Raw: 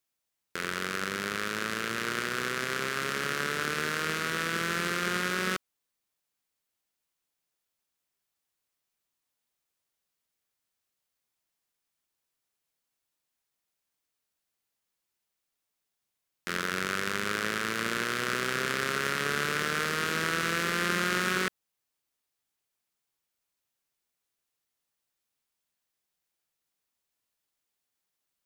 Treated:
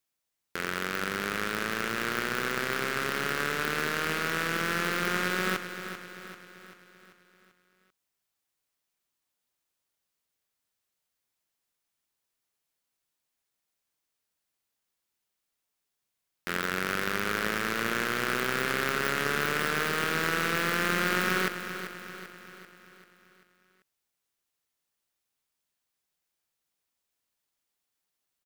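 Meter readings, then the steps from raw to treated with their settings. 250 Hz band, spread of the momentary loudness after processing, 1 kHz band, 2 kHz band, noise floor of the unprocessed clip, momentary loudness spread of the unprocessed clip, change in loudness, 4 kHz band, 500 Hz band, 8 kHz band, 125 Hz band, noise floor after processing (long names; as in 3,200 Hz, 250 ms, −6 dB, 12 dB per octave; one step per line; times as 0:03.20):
+1.5 dB, 14 LU, +1.5 dB, +1.0 dB, −84 dBFS, 4 LU, +1.0 dB, −0.5 dB, +2.0 dB, −1.5 dB, +1.0 dB, −84 dBFS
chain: stylus tracing distortion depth 0.13 ms
repeating echo 390 ms, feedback 51%, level −10.5 dB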